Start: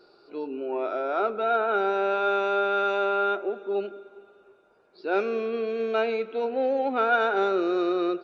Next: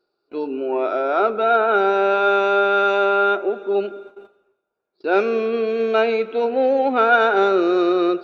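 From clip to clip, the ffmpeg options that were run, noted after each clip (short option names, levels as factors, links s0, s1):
-af "agate=range=0.0562:threshold=0.00398:ratio=16:detection=peak,areverse,acompressor=mode=upward:threshold=0.00398:ratio=2.5,areverse,volume=2.37"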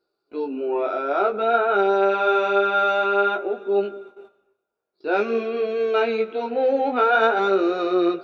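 -af "flanger=delay=15:depth=6.6:speed=0.52"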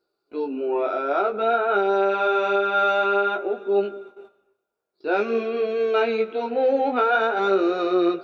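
-af "alimiter=limit=0.299:level=0:latency=1:release=253"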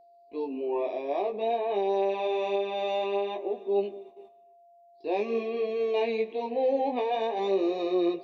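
-af "asuperstop=centerf=1400:order=8:qfactor=2.5,aeval=exprs='val(0)+0.00355*sin(2*PI*690*n/s)':c=same,volume=0.531"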